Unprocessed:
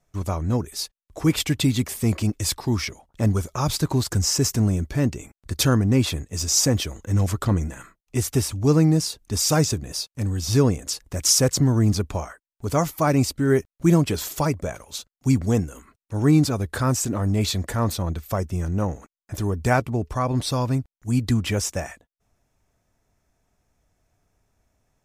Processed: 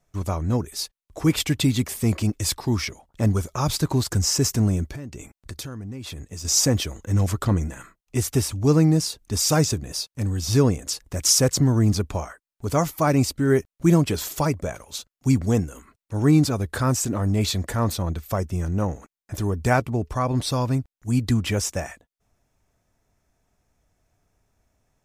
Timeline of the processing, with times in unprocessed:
0:04.88–0:06.45: downward compressor 10 to 1, threshold −31 dBFS

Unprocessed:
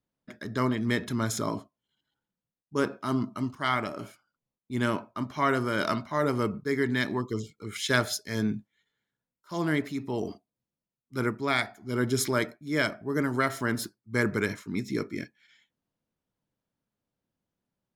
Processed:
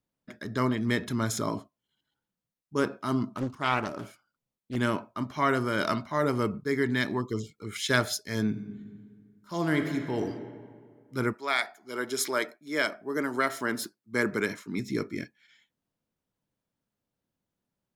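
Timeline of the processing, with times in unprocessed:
0:03.29–0:04.76: highs frequency-modulated by the lows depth 0.67 ms
0:08.47–0:10.22: thrown reverb, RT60 2 s, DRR 5.5 dB
0:11.32–0:14.78: high-pass filter 590 Hz → 160 Hz

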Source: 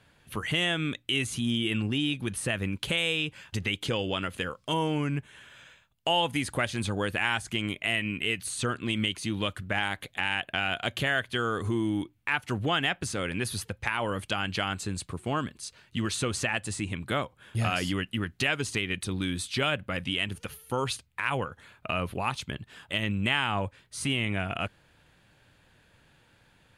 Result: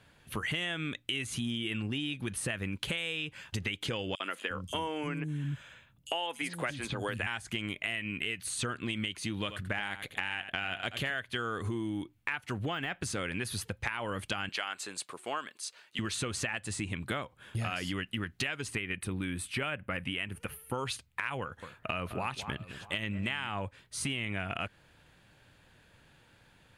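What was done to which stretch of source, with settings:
0:04.15–0:07.27: three-band delay without the direct sound highs, mids, lows 50/350 ms, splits 250/4,600 Hz
0:09.38–0:11.14: single-tap delay 84 ms −12 dB
0:12.58–0:12.99: de-essing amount 95%
0:14.49–0:15.99: high-pass filter 530 Hz
0:18.68–0:20.75: flat-topped bell 4,900 Hz −10 dB 1.3 octaves
0:21.41–0:23.49: delay that swaps between a low-pass and a high-pass 213 ms, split 1,900 Hz, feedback 53%, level −12.5 dB
whole clip: dynamic equaliser 1,900 Hz, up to +4 dB, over −41 dBFS, Q 1.1; downward compressor, threshold −31 dBFS

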